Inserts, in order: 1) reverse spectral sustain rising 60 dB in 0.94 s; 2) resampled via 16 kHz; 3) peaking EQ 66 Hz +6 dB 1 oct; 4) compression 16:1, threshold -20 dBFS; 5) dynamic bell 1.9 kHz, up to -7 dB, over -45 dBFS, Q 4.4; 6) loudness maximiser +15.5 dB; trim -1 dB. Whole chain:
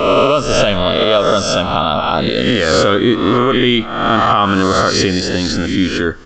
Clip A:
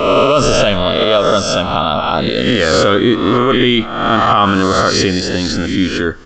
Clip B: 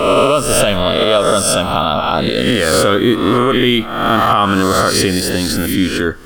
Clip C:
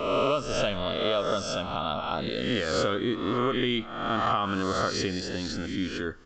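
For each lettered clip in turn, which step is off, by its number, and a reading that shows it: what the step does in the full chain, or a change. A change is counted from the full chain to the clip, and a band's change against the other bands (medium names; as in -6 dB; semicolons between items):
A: 4, mean gain reduction 2.0 dB; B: 2, 8 kHz band +6.5 dB; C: 6, crest factor change +4.0 dB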